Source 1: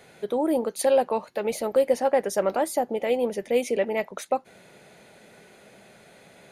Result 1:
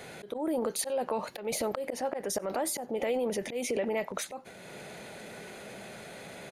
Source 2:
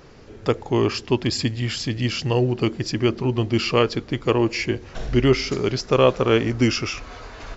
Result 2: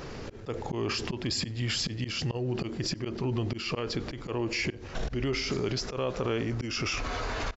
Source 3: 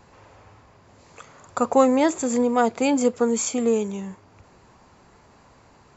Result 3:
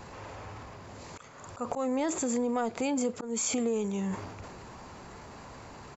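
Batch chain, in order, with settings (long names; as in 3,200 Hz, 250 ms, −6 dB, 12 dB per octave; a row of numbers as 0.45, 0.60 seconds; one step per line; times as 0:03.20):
volume swells 404 ms
downward compressor 8 to 1, threshold −34 dBFS
transient designer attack −2 dB, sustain +7 dB
slap from a distant wall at 16 metres, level −30 dB
level +6.5 dB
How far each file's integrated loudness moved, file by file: −7.5, −10.0, −9.5 LU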